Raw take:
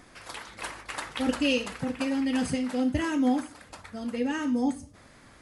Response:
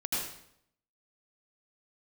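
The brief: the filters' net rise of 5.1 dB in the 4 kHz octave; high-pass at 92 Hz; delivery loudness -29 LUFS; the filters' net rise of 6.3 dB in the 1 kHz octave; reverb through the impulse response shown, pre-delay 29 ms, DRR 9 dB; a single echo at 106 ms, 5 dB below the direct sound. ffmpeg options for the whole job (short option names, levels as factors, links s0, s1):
-filter_complex "[0:a]highpass=92,equalizer=f=1000:t=o:g=8,equalizer=f=4000:t=o:g=7,aecho=1:1:106:0.562,asplit=2[s0][s1];[1:a]atrim=start_sample=2205,adelay=29[s2];[s1][s2]afir=irnorm=-1:irlink=0,volume=0.178[s3];[s0][s3]amix=inputs=2:normalize=0,volume=0.668"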